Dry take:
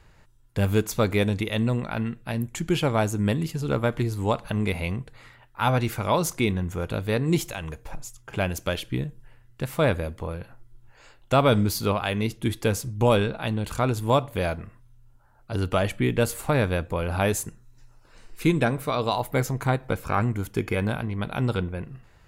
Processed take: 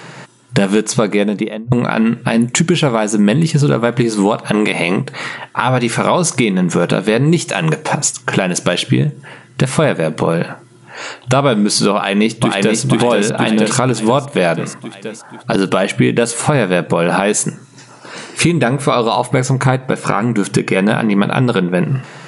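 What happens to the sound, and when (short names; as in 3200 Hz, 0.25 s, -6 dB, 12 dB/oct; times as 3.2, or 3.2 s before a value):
0.86–1.72 studio fade out
4.53–5 spectral limiter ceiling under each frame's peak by 13 dB
11.95–12.81 echo throw 0.48 s, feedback 45%, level -1 dB
whole clip: FFT band-pass 120–11000 Hz; compressor 12:1, threshold -35 dBFS; maximiser +27.5 dB; gain -1 dB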